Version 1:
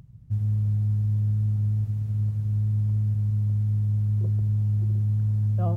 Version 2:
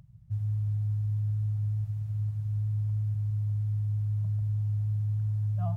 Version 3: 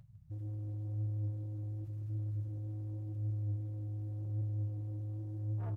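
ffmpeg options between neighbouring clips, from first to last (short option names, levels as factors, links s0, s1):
-af "afftfilt=real='re*(1-between(b*sr/4096,200,570))':imag='im*(1-between(b*sr/4096,200,570))':win_size=4096:overlap=0.75,volume=0.531"
-af "asoftclip=type=tanh:threshold=0.0224,aecho=1:1:154:0.211,flanger=delay=8.7:depth=8:regen=64:speed=0.89:shape=sinusoidal"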